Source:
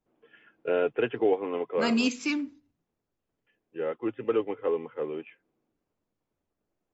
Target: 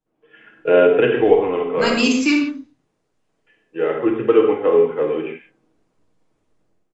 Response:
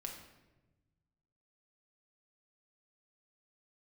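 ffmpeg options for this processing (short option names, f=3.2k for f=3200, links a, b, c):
-filter_complex "[0:a]dynaudnorm=f=100:g=7:m=14dB,asplit=3[a][b][c];[a]afade=t=out:st=1.2:d=0.02[d];[b]asubboost=boost=9:cutoff=96,afade=t=in:st=1.2:d=0.02,afade=t=out:st=1.92:d=0.02[e];[c]afade=t=in:st=1.92:d=0.02[f];[d][e][f]amix=inputs=3:normalize=0[g];[1:a]atrim=start_sample=2205,atrim=end_sample=6174,asetrate=35280,aresample=44100[h];[g][h]afir=irnorm=-1:irlink=0,aresample=22050,aresample=44100,asettb=1/sr,asplit=3[i][j][k];[i]atrim=end=2.444[l];[j]atrim=start=2.44:end=3.93,asetpts=PTS-STARTPTS,afade=t=in:d=0.004:c=qsin,afade=t=out:st=1.486:d=0.004:c=qsin,lowshelf=f=180:g=-8[m];[k]atrim=start=3.926[n];[l][m]acrossfade=d=0.004:c1=hsin:c2=qsin[o];[o][n]acrossfade=d=0.004:c1=qsin:c2=hsin,volume=1dB"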